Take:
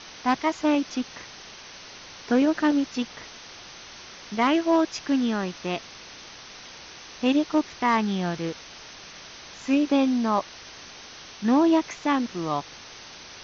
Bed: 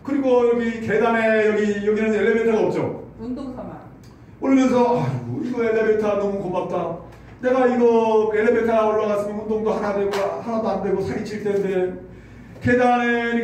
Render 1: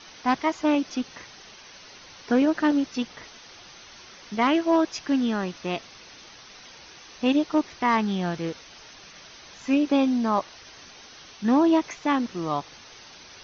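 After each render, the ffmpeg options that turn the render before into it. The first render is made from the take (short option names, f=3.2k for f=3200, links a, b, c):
-af "afftdn=nr=6:nf=-44"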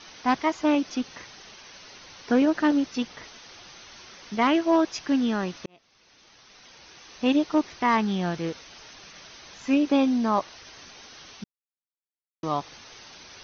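-filter_complex "[0:a]asplit=4[a][b][c][d];[a]atrim=end=5.66,asetpts=PTS-STARTPTS,afade=t=out:st=5.656:d=0.004:c=hsin[e];[b]atrim=start=5.66:end=11.44,asetpts=PTS-STARTPTS,afade=t=in:d=1.68,afade=t=out:st=5.776:d=0.004:c=hsin[f];[c]atrim=start=11.44:end=12.43,asetpts=PTS-STARTPTS,volume=0[g];[d]atrim=start=12.43,asetpts=PTS-STARTPTS,afade=t=in:d=0.004:c=hsin[h];[e][f][g][h]concat=n=4:v=0:a=1"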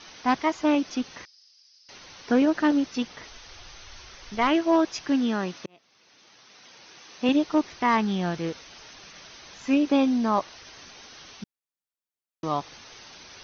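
-filter_complex "[0:a]asettb=1/sr,asplit=3[a][b][c];[a]atrim=end=1.254[d];[b]atrim=start=1.25:end=1.89,asetpts=PTS-STARTPTS,afade=t=in:d=0.004:c=qsin,afade=t=out:st=0.636:d=0.004:c=qsin,bandpass=f=5k:t=q:w=11[e];[c]atrim=start=1.886[f];[d][e]acrossfade=d=0.004:c1=hsin:c2=qsin[g];[g][f]acrossfade=d=0.004:c1=qsin:c2=hsin,asplit=3[h][i][j];[h]afade=t=out:st=3.28:d=0.02[k];[i]asubboost=boost=11:cutoff=63,afade=t=in:st=3.28:d=0.02,afade=t=out:st=4.5:d=0.02[l];[j]afade=t=in:st=4.5:d=0.02[m];[k][l][m]amix=inputs=3:normalize=0,asettb=1/sr,asplit=3[n][o][p];[n]atrim=end=5.094[q];[o]atrim=start=5.09:end=7.29,asetpts=PTS-STARTPTS,afade=t=in:d=0.004:c=qsin,afade=t=out:st=2.196:d=0.004:c=qsin,highpass=130[r];[p]atrim=start=7.286[s];[q][r]acrossfade=d=0.004:c1=hsin:c2=qsin[t];[t][s]acrossfade=d=0.004:c1=qsin:c2=hsin"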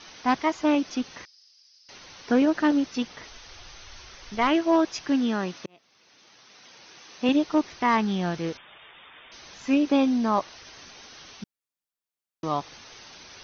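-filter_complex "[0:a]asettb=1/sr,asplit=3[a][b][c];[a]atrim=end=8.574[d];[b]atrim=start=8.57:end=9.32,asetpts=PTS-STARTPTS,afade=t=in:d=0.004:c=qsin,afade=t=out:st=0.746:d=0.004:c=qsin,lowpass=f=3.1k:t=q:w=0.5098,lowpass=f=3.1k:t=q:w=0.6013,lowpass=f=3.1k:t=q:w=0.9,lowpass=f=3.1k:t=q:w=2.563,afreqshift=-3700[e];[c]atrim=start=9.316[f];[d][e]acrossfade=d=0.004:c1=hsin:c2=qsin[g];[g][f]acrossfade=d=0.004:c1=qsin:c2=hsin"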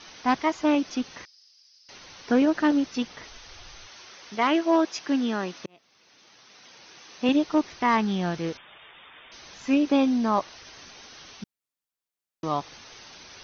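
-filter_complex "[0:a]asettb=1/sr,asplit=3[a][b][c];[a]atrim=end=3.874[d];[b]atrim=start=3.87:end=5.58,asetpts=PTS-STARTPTS,afade=t=in:d=0.004:c=qsin,afade=t=out:st=1.706:d=0.004:c=qsin,highpass=200[e];[c]atrim=start=5.576[f];[d][e]acrossfade=d=0.004:c1=hsin:c2=qsin[g];[g][f]acrossfade=d=0.004:c1=qsin:c2=hsin"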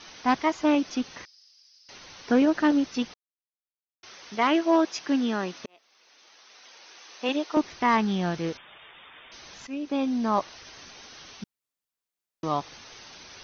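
-filter_complex "[0:a]asettb=1/sr,asplit=3[a][b][c];[a]atrim=end=5.654[d];[b]atrim=start=5.65:end=7.57,asetpts=PTS-STARTPTS,afade=t=in:d=0.004:c=qsin,afade=t=out:st=1.916:d=0.004:c=qsin,highpass=420[e];[c]atrim=start=7.566[f];[d][e]acrossfade=d=0.004:c1=hsin:c2=qsin[g];[g][f]acrossfade=d=0.004:c1=qsin:c2=hsin,asplit=4[h][i][j][k];[h]atrim=end=3.14,asetpts=PTS-STARTPTS,afade=t=out:st=3.136:d=0.004:c=hsin[l];[i]atrim=start=3.14:end=4.03,asetpts=PTS-STARTPTS,volume=0[m];[j]atrim=start=4.03:end=9.67,asetpts=PTS-STARTPTS,afade=t=in:d=0.004:c=hsin,afade=t=out:st=5.636:d=0.004:c=hsin:silence=0.149624[n];[k]atrim=start=9.67,asetpts=PTS-STARTPTS,afade=t=in:d=0.75:silence=0.149624[o];[l][m][n][o]concat=n=4:v=0:a=1"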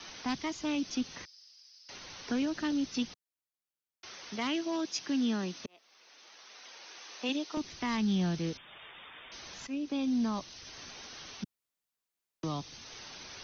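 -filter_complex "[0:a]acrossover=split=140|730[a][b][c];[b]alimiter=limit=-24dB:level=0:latency=1[d];[a][d][c]amix=inputs=3:normalize=0,acrossover=split=310|3000[e][f][g];[f]acompressor=threshold=-50dB:ratio=2[h];[e][h][g]amix=inputs=3:normalize=0"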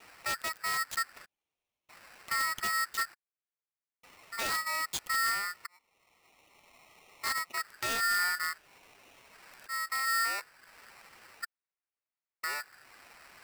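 -filter_complex "[0:a]acrossover=split=140|650|1200[a][b][c][d];[d]acrusher=bits=5:mix=0:aa=0.000001[e];[a][b][c][e]amix=inputs=4:normalize=0,aeval=exprs='val(0)*sgn(sin(2*PI*1600*n/s))':c=same"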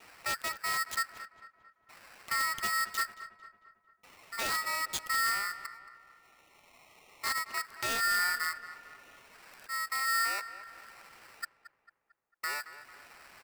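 -filter_complex "[0:a]asplit=2[a][b];[b]adelay=224,lowpass=f=2.5k:p=1,volume=-12.5dB,asplit=2[c][d];[d]adelay=224,lowpass=f=2.5k:p=1,volume=0.55,asplit=2[e][f];[f]adelay=224,lowpass=f=2.5k:p=1,volume=0.55,asplit=2[g][h];[h]adelay=224,lowpass=f=2.5k:p=1,volume=0.55,asplit=2[i][j];[j]adelay=224,lowpass=f=2.5k:p=1,volume=0.55,asplit=2[k][l];[l]adelay=224,lowpass=f=2.5k:p=1,volume=0.55[m];[a][c][e][g][i][k][m]amix=inputs=7:normalize=0"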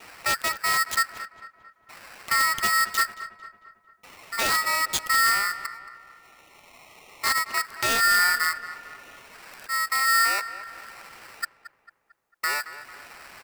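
-af "volume=9dB"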